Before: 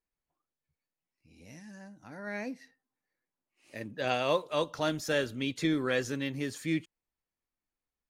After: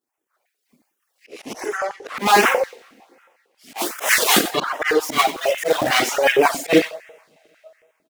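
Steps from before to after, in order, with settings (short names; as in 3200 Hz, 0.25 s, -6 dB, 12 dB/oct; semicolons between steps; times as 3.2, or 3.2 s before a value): 3.77–4.37 spectral whitening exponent 0.3; in parallel at -7 dB: requantised 6-bit, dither none; 1.77–2.17 on the sum: LPF 9200 Hz; two-slope reverb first 0.43 s, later 2.1 s, from -22 dB, DRR -7.5 dB; full-wave rectifier; reverb removal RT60 1.8 s; feedback echo 93 ms, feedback 17%, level -13 dB; AGC gain up to 16 dB; auto swell 0.114 s; LFO notch sine 1.3 Hz 910–4500 Hz; 5–6.01 short-mantissa float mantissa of 2-bit; stepped high-pass 11 Hz 250–1800 Hz; gain +4 dB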